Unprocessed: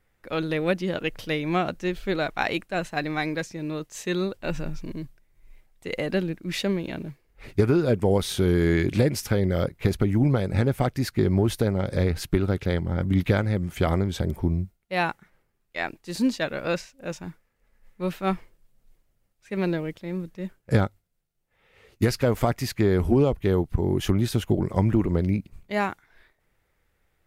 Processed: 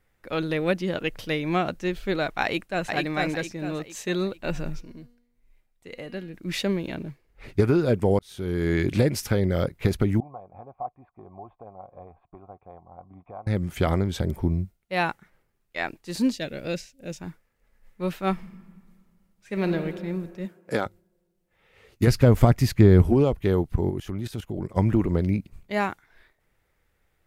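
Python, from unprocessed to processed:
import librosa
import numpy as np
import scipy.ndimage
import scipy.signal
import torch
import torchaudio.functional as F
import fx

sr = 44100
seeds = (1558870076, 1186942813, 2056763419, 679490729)

y = fx.echo_throw(x, sr, start_s=2.43, length_s=0.46, ms=450, feedback_pct=40, wet_db=-2.5)
y = fx.comb_fb(y, sr, f0_hz=240.0, decay_s=0.85, harmonics='all', damping=0.0, mix_pct=70, at=(4.8, 6.33), fade=0.02)
y = fx.high_shelf(y, sr, hz=6900.0, db=-5.0, at=(6.95, 7.6))
y = fx.formant_cascade(y, sr, vowel='a', at=(10.2, 13.47))
y = fx.peak_eq(y, sr, hz=1100.0, db=-14.5, octaves=1.3, at=(16.32, 17.2))
y = fx.reverb_throw(y, sr, start_s=18.32, length_s=1.43, rt60_s=2.0, drr_db=5.5)
y = fx.highpass(y, sr, hz=fx.line((20.45, 110.0), (20.85, 410.0)), slope=12, at=(20.45, 20.85), fade=0.02)
y = fx.low_shelf(y, sr, hz=250.0, db=11.5, at=(22.07, 23.02))
y = fx.level_steps(y, sr, step_db=15, at=(23.9, 24.77))
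y = fx.edit(y, sr, fx.fade_in_span(start_s=8.19, length_s=0.68), tone=tone)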